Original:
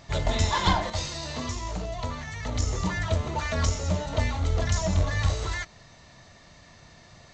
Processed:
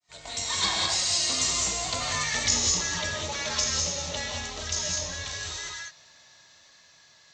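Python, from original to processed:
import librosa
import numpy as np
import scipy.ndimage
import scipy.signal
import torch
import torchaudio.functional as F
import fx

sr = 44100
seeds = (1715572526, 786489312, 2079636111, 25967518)

y = fx.fade_in_head(x, sr, length_s=0.67)
y = fx.doppler_pass(y, sr, speed_mps=18, closest_m=5.4, pass_at_s=2.24)
y = fx.rider(y, sr, range_db=4, speed_s=0.5)
y = fx.tilt_eq(y, sr, slope=4.0)
y = fx.rev_gated(y, sr, seeds[0], gate_ms=230, shape='rising', drr_db=-0.5)
y = fx.dynamic_eq(y, sr, hz=1100.0, q=0.89, threshold_db=-50.0, ratio=4.0, max_db=-5)
y = y * 10.0 ** (8.5 / 20.0)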